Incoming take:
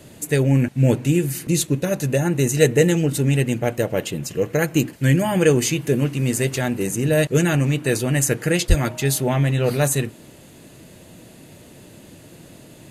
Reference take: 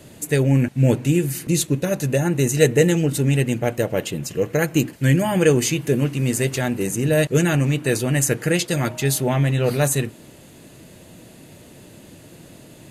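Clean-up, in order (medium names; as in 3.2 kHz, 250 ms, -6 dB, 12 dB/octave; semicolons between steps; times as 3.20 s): 8.68–8.80 s: high-pass 140 Hz 24 dB/octave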